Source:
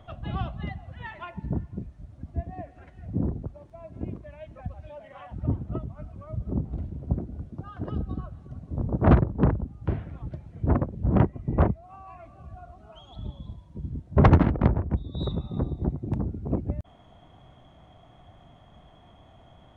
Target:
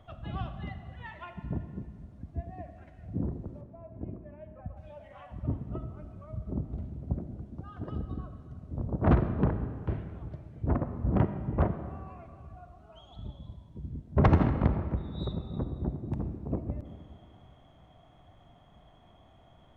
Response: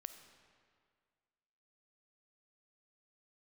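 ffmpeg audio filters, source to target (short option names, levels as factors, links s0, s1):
-filter_complex "[0:a]asettb=1/sr,asplit=3[s0][s1][s2];[s0]atrim=end=3.614[s3];[s1]atrim=start=3.61:end=4.77,asetpts=PTS-STARTPTS,afade=t=in:d=0.004:c=qsin,afade=t=out:st=1.156:d=0.004:c=qsin,lowpass=1400[s4];[s2]atrim=start=4.766[s5];[s3][s4]acrossfade=d=0.004:c1=hsin:c2=qsin[s6];[s6][s5]acrossfade=d=0.004:c1=qsin:c2=hsin[s7];[1:a]atrim=start_sample=2205[s8];[s7][s8]afir=irnorm=-1:irlink=0"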